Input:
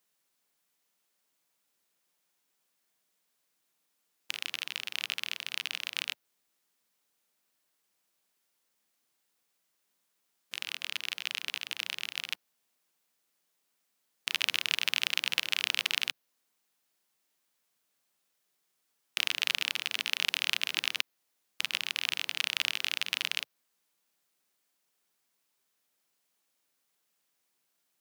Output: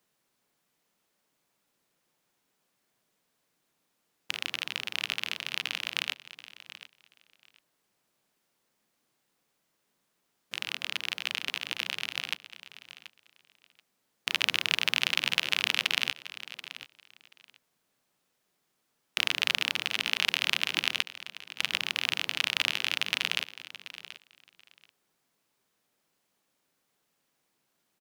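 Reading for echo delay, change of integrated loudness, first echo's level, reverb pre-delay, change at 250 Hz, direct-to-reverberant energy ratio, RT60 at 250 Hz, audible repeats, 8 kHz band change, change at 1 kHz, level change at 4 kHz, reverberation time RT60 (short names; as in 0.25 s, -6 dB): 0.732 s, +2.5 dB, -15.0 dB, none, +9.5 dB, none, none, 2, 0.0 dB, +5.5 dB, +2.0 dB, none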